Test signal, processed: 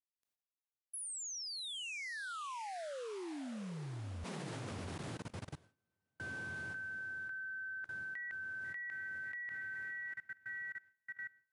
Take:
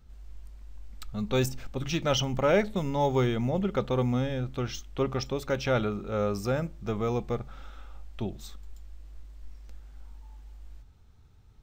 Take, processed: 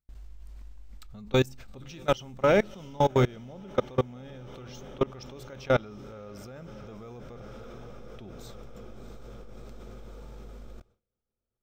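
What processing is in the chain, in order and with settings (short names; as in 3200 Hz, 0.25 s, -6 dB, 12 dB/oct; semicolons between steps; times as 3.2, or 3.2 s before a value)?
diffused feedback echo 0.668 s, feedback 68%, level -13 dB; level quantiser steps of 24 dB; gate with hold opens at -60 dBFS; gain +4.5 dB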